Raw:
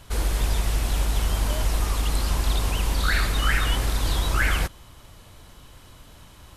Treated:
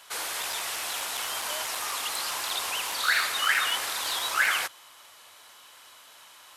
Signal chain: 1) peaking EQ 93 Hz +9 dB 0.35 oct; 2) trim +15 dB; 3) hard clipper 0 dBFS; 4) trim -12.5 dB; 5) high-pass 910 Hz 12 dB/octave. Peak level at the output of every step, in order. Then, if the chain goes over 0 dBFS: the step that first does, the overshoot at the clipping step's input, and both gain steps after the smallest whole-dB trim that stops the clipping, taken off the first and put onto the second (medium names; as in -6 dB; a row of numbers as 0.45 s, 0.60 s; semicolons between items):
-9.0 dBFS, +6.0 dBFS, 0.0 dBFS, -12.5 dBFS, -11.0 dBFS; step 2, 6.0 dB; step 2 +9 dB, step 4 -6.5 dB